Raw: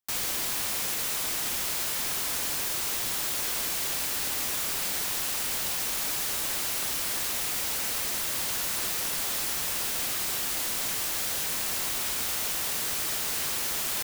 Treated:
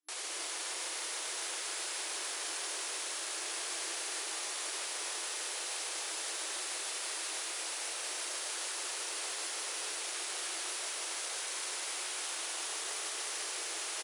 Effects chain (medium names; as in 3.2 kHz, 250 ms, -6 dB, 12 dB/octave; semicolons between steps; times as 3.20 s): FFT band-pass 310–11000 Hz; peak limiter -29 dBFS, peak gain reduction 8.5 dB; doubling 33 ms -11 dB; two-band feedback delay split 1.5 kHz, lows 683 ms, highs 275 ms, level -15.5 dB; bit-crushed delay 153 ms, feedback 80%, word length 10-bit, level -6 dB; trim -2.5 dB